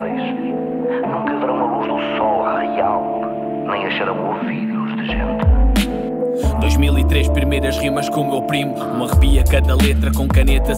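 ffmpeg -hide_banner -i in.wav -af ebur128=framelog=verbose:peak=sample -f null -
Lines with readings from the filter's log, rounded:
Integrated loudness:
  I:         -18.0 LUFS
  Threshold: -28.0 LUFS
Loudness range:
  LRA:         3.0 LU
  Threshold: -38.1 LUFS
  LRA low:   -19.6 LUFS
  LRA high:  -16.6 LUFS
Sample peak:
  Peak:       -3.0 dBFS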